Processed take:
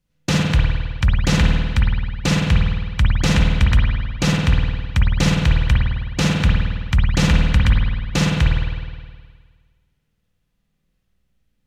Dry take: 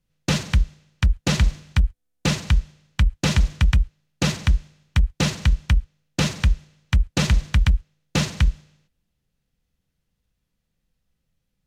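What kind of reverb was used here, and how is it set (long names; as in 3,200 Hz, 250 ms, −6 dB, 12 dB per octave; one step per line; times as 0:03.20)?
spring reverb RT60 1.6 s, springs 52 ms, chirp 55 ms, DRR −2 dB
level +1 dB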